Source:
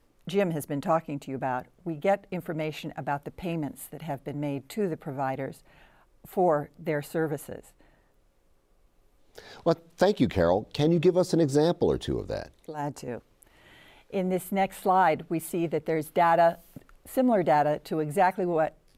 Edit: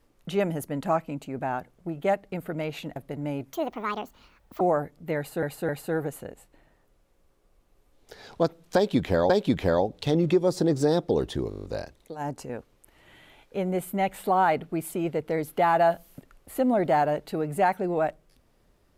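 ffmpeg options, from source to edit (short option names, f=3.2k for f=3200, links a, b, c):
-filter_complex "[0:a]asplit=14[a][b][c][d][e][f][g][h][i][j][k][l][m][n];[a]atrim=end=2.962[o];[b]atrim=start=4.128:end=4.704[p];[c]atrim=start=4.7:end=6.39,asetpts=PTS-STARTPTS,asetrate=69237,aresample=44100[q];[d]atrim=start=6.386:end=7.212[r];[e]atrim=start=6.948:end=7.212[s];[f]atrim=start=6.948:end=10.562[t];[g]atrim=start=10.018:end=12.242[u];[h]atrim=start=12.218:end=12.242[v];[i]atrim=start=12.218:end=12.242[w];[j]atrim=start=12.218:end=12.242[x];[k]atrim=start=12.218:end=12.242[y];[l]atrim=start=12.218:end=12.242[z];[m]atrim=start=12.218:end=12.242[aa];[n]atrim=start=12.218[ab];[o][p]acrossfade=d=0.004:c1=hsin:c2=hsin[ac];[ac][q]acrossfade=d=0.004:c1=hsin:c2=hsin[ad];[ad][r]acrossfade=d=0.004:c1=hsin:c2=hsin[ae];[ae][s]acrossfade=d=0.004:c1=hsin:c2=hsin[af];[af][t]acrossfade=d=0.004:c1=hsin:c2=hsin[ag];[ag][u]acrossfade=d=0.004:c1=hsin:c2=hsin[ah];[ah][v]acrossfade=d=0.004:c1=hsin:c2=hsin[ai];[ai][w]acrossfade=d=0.004:c1=hsin:c2=hsin[aj];[aj][x]acrossfade=d=0.004:c1=hsin:c2=hsin[ak];[ak][y]acrossfade=d=0.004:c1=hsin:c2=hsin[al];[al][z]acrossfade=d=0.004:c1=hsin:c2=hsin[am];[am][aa]acrossfade=d=0.004:c1=hsin:c2=hsin[an];[an][ab]acrossfade=d=0.004:c1=hsin:c2=hsin"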